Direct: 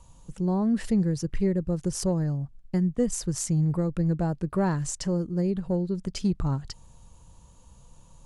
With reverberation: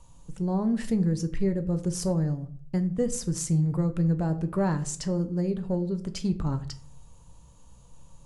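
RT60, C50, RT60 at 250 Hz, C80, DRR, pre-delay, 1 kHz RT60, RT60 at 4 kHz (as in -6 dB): 0.50 s, 15.5 dB, 0.65 s, 19.0 dB, 8.0 dB, 7 ms, 0.45 s, 0.30 s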